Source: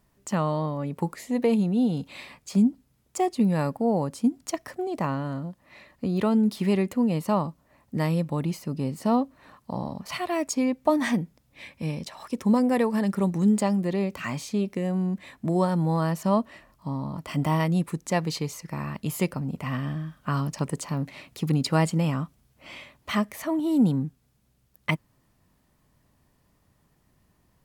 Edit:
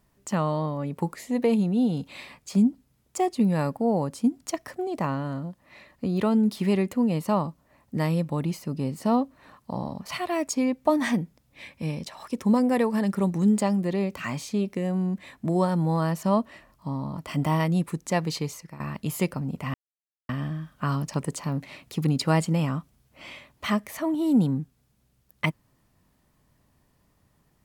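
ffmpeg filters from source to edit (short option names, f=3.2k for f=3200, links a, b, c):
-filter_complex "[0:a]asplit=3[a][b][c];[a]atrim=end=18.8,asetpts=PTS-STARTPTS,afade=t=out:st=18.49:d=0.31:silence=0.199526[d];[b]atrim=start=18.8:end=19.74,asetpts=PTS-STARTPTS,afade=t=in:d=0.004:c=hsin:silence=0.199526,afade=t=out:st=0.936:d=0.004:c=hsin,apad=pad_dur=0.55[e];[c]atrim=start=19.74,asetpts=PTS-STARTPTS,afade=t=in:d=0.004:c=hsin[f];[d][e][f]concat=n=3:v=0:a=1"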